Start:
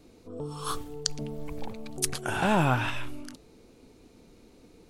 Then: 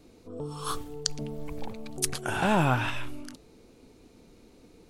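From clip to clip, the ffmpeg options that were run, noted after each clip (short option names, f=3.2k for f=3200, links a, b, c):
-af anull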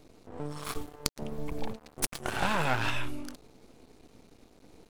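-af "aeval=exprs='max(val(0),0)':c=same,volume=2.5dB"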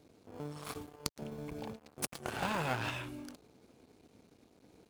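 -filter_complex "[0:a]highpass=75,asplit=2[a][b];[b]acrusher=samples=23:mix=1:aa=0.000001,volume=-9dB[c];[a][c]amix=inputs=2:normalize=0,volume=-7dB"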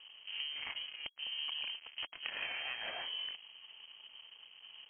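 -af "acompressor=threshold=-44dB:ratio=10,lowpass=f=2.8k:t=q:w=0.5098,lowpass=f=2.8k:t=q:w=0.6013,lowpass=f=2.8k:t=q:w=0.9,lowpass=f=2.8k:t=q:w=2.563,afreqshift=-3300,volume=7.5dB"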